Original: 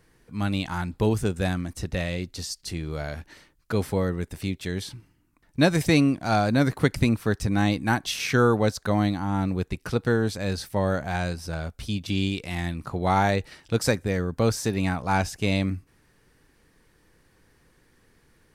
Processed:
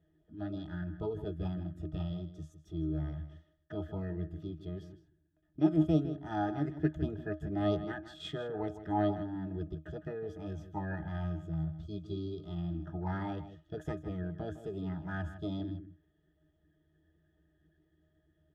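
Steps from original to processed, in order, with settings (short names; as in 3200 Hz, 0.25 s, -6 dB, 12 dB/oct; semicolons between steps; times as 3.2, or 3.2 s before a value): octave resonator D#, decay 0.17 s; formant shift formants +5 st; outdoor echo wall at 27 m, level -12 dB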